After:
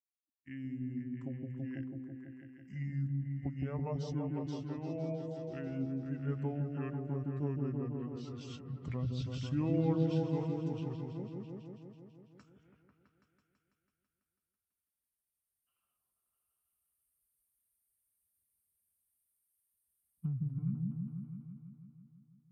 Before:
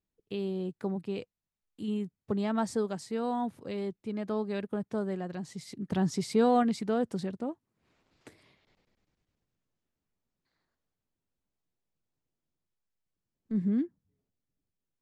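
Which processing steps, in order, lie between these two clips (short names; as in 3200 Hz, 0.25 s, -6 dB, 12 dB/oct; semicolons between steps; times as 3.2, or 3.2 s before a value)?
per-bin expansion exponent 1.5; recorder AGC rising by 6.8 dB/s; HPF 110 Hz; wide varispeed 0.667×; repeats that get brighter 0.165 s, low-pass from 400 Hz, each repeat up 1 oct, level 0 dB; gain -9 dB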